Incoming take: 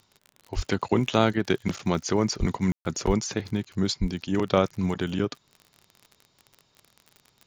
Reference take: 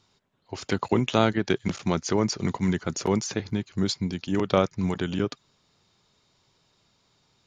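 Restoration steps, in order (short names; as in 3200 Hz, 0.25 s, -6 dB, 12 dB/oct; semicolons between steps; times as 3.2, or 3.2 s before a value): de-click; de-plosive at 0.55/2.39/3.06/4; room tone fill 2.72–2.85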